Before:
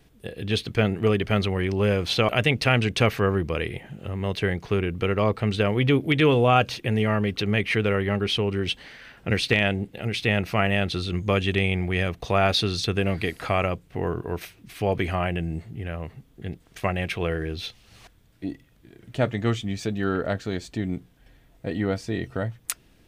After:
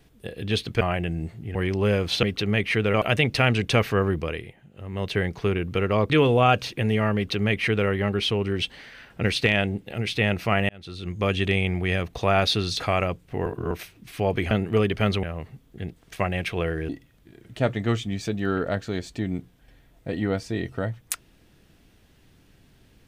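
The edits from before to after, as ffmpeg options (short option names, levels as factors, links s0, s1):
-filter_complex "[0:a]asplit=15[s0][s1][s2][s3][s4][s5][s6][s7][s8][s9][s10][s11][s12][s13][s14];[s0]atrim=end=0.812[s15];[s1]atrim=start=15.128:end=15.872[s16];[s2]atrim=start=1.528:end=2.212[s17];[s3]atrim=start=7.228:end=7.942[s18];[s4]atrim=start=2.208:end=3.81,asetpts=PTS-STARTPTS,afade=t=out:st=1.242:d=0.36:silence=0.237137[s19];[s5]atrim=start=3.81:end=4,asetpts=PTS-STARTPTS,volume=0.237[s20];[s6]atrim=start=4:end=5.372,asetpts=PTS-STARTPTS,afade=t=in:d=0.36:silence=0.237137[s21];[s7]atrim=start=6.168:end=10.76,asetpts=PTS-STARTPTS,afade=t=out:st=4.588:d=0.004:c=hsin[s22];[s8]atrim=start=10.76:end=12.872,asetpts=PTS-STARTPTS,afade=t=in:d=0.68[s23];[s9]atrim=start=13.418:end=14.082[s24];[s10]atrim=start=14.078:end=14.332,asetpts=PTS-STARTPTS,areverse[s25];[s11]atrim=start=14.328:end=15.132[s26];[s12]atrim=start=0.808:end=1.532[s27];[s13]atrim=start=15.868:end=17.532[s28];[s14]atrim=start=18.468[s29];[s15][s16]acrossfade=d=0.004:c1=hsin:c2=hsin[s30];[s30][s17]acrossfade=d=0.004:c1=hsin:c2=hsin[s31];[s31][s18]acrossfade=d=0.004:c1=hsin:c2=hsin[s32];[s19][s20][s21]concat=n=3:v=0:a=1[s33];[s32][s33]acrossfade=d=0.004:c1=hsin:c2=hsin[s34];[s22][s23]concat=n=2:v=0:a=1[s35];[s34][s35]acrossfade=d=0.004:c1=hsin:c2=hsin[s36];[s36][s24]acrossfade=d=0.004:c1=hsin:c2=hsin[s37];[s37][s25]acrossfade=d=0.004:c1=hsin:c2=hsin[s38];[s38][s26]acrossfade=d=0.004:c1=hsin:c2=hsin[s39];[s39][s27]acrossfade=d=0.004:c1=hsin:c2=hsin[s40];[s40][s28]acrossfade=d=0.004:c1=hsin:c2=hsin[s41];[s41][s29]acrossfade=d=0.004:c1=hsin:c2=hsin"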